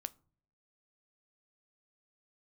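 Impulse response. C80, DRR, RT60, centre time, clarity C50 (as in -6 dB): 29.0 dB, 14.0 dB, no single decay rate, 2 ms, 24.5 dB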